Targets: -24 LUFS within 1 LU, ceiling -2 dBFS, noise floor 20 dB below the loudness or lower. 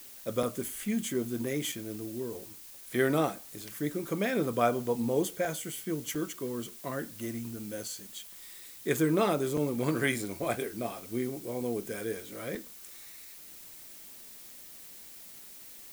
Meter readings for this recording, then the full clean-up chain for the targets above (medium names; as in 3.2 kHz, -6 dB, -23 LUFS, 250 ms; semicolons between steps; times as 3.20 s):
dropouts 6; longest dropout 3.5 ms; noise floor -49 dBFS; noise floor target -53 dBFS; loudness -32.5 LUFS; peak level -12.5 dBFS; loudness target -24.0 LUFS
-> interpolate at 0.43/1.72/5.45/6.15/9.57/12.55 s, 3.5 ms; noise reduction 6 dB, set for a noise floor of -49 dBFS; trim +8.5 dB